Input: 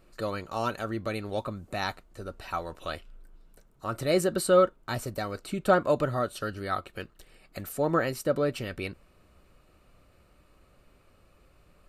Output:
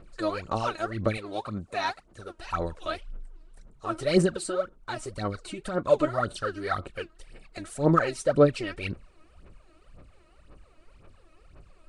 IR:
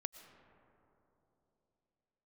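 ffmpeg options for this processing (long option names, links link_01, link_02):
-filter_complex "[0:a]asettb=1/sr,asplit=3[link_01][link_02][link_03];[link_01]atrim=end=1.174[link_04];[link_02]atrim=start=1.17:end=2.39,asetpts=PTS-STARTPTS,afade=type=in:duration=0.004:curve=qsin,afade=type=out:start_time=1.216:duration=0.004:curve=qsin,highpass=frequency=180:poles=1[link_05];[link_03]atrim=start=2.386[link_06];[link_04][link_05]acrossfade=duration=0.004:curve1=hsin:curve2=qsin[link_07];[link_07][link_06]acrossfade=duration=0.004:curve1=qsin:curve2=hsin,asettb=1/sr,asplit=3[link_08][link_09][link_10];[link_08]atrim=end=4.314[link_11];[link_09]atrim=start=4.31:end=5.86,asetpts=PTS-STARTPTS,afade=type=in:duration=0.004:curve=qsin,afade=type=out:start_time=1.546:duration=0.004:curve=qsin,acompressor=threshold=-33dB:ratio=2.5[link_12];[link_10]atrim=start=5.856[link_13];[link_11][link_12]acrossfade=duration=0.004:curve1=hsin:curve2=qsin[link_14];[link_14][link_13]acrossfade=duration=0.004:curve1=qsin:curve2=hsin,aphaser=in_gain=1:out_gain=1:delay=3.2:decay=0.76:speed=1.9:type=sinusoidal,volume=-1.5dB" -ar 22050 -c:a nellymoser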